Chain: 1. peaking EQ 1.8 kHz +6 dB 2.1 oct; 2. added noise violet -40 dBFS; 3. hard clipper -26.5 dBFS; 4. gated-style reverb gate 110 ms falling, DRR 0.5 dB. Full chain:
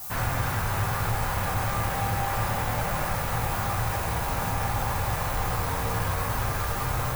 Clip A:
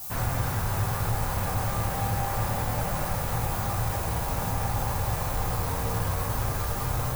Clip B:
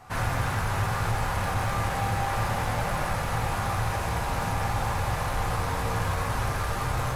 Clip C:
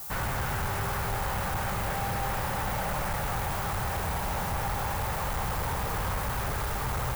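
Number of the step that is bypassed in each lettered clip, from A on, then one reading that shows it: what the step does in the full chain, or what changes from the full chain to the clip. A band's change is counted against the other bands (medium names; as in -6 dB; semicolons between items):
1, 2 kHz band -4.5 dB; 2, 8 kHz band -3.0 dB; 4, crest factor change -9.0 dB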